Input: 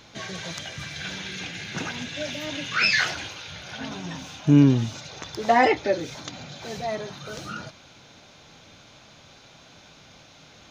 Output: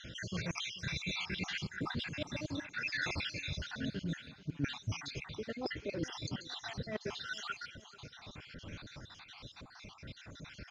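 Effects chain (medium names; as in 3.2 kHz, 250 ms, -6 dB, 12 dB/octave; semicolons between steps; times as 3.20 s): random holes in the spectrogram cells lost 66%; low-pass 4.9 kHz 12 dB/octave; bass shelf 130 Hz +10 dB; reverse; compression 16:1, threshold -37 dBFS, peak gain reduction 28 dB; reverse; peaking EQ 730 Hz -7 dB 0.6 oct; on a send: feedback delay 438 ms, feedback 48%, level -19 dB; on the sum: trim +3.5 dB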